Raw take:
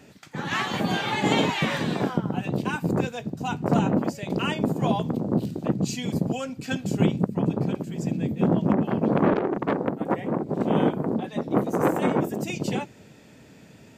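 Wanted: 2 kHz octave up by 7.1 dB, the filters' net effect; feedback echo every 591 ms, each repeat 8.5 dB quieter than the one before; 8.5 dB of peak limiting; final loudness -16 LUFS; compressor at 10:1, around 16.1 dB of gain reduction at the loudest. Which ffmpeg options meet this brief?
-af "equalizer=f=2000:t=o:g=9,acompressor=threshold=0.0224:ratio=10,alimiter=level_in=1.68:limit=0.0631:level=0:latency=1,volume=0.596,aecho=1:1:591|1182|1773|2364:0.376|0.143|0.0543|0.0206,volume=13.3"

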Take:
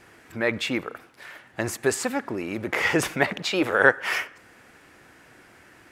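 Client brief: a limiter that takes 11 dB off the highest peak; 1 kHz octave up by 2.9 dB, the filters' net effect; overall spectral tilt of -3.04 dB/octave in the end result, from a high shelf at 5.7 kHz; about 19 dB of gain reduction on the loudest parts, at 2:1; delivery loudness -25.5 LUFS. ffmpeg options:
-af "equalizer=f=1000:t=o:g=4,highshelf=f=5700:g=3.5,acompressor=threshold=0.00501:ratio=2,volume=7.08,alimiter=limit=0.224:level=0:latency=1"

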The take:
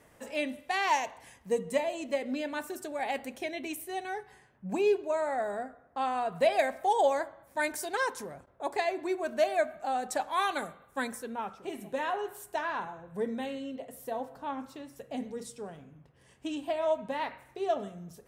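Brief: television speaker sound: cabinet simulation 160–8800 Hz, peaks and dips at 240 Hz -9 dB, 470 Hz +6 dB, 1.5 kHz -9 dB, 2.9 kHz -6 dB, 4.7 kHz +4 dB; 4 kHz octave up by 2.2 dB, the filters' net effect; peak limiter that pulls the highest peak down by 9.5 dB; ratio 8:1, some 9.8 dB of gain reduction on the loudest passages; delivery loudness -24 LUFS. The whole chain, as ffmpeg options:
-af "equalizer=f=4000:t=o:g=4,acompressor=threshold=0.0282:ratio=8,alimiter=level_in=2.11:limit=0.0631:level=0:latency=1,volume=0.473,highpass=f=160:w=0.5412,highpass=f=160:w=1.3066,equalizer=f=240:t=q:w=4:g=-9,equalizer=f=470:t=q:w=4:g=6,equalizer=f=1500:t=q:w=4:g=-9,equalizer=f=2900:t=q:w=4:g=-6,equalizer=f=4700:t=q:w=4:g=4,lowpass=f=8800:w=0.5412,lowpass=f=8800:w=1.3066,volume=6.31"

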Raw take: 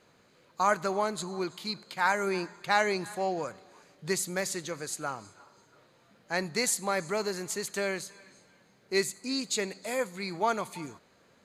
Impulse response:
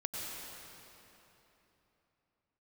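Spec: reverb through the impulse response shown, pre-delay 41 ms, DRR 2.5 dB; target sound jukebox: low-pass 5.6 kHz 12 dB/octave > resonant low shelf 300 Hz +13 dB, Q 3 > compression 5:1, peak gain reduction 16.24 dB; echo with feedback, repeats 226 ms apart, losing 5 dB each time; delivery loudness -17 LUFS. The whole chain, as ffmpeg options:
-filter_complex "[0:a]aecho=1:1:226|452|678|904|1130|1356|1582:0.562|0.315|0.176|0.0988|0.0553|0.031|0.0173,asplit=2[s0][s1];[1:a]atrim=start_sample=2205,adelay=41[s2];[s1][s2]afir=irnorm=-1:irlink=0,volume=0.562[s3];[s0][s3]amix=inputs=2:normalize=0,lowpass=5600,lowshelf=f=300:t=q:w=3:g=13,acompressor=threshold=0.0316:ratio=5,volume=5.96"

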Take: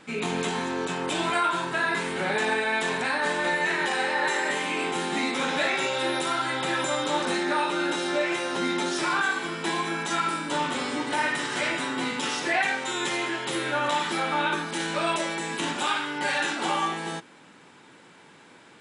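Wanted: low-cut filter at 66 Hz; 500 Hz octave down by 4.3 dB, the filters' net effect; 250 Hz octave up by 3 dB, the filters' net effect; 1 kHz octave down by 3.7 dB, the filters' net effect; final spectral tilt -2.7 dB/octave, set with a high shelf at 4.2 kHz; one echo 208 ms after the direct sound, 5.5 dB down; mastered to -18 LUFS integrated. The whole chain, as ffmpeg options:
-af "highpass=66,equalizer=f=250:t=o:g=7.5,equalizer=f=500:t=o:g=-8.5,equalizer=f=1000:t=o:g=-3,highshelf=f=4200:g=4,aecho=1:1:208:0.531,volume=2.37"

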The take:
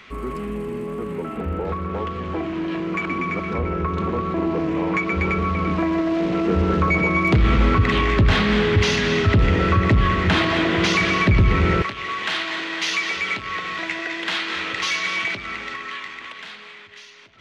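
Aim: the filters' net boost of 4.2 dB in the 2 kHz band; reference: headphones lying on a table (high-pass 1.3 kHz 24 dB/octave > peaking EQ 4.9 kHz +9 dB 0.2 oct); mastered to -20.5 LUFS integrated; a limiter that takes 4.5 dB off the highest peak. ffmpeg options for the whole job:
-af "equalizer=f=2000:t=o:g=5,alimiter=limit=0.355:level=0:latency=1,highpass=f=1300:w=0.5412,highpass=f=1300:w=1.3066,equalizer=f=4900:t=o:w=0.2:g=9,volume=1.12"

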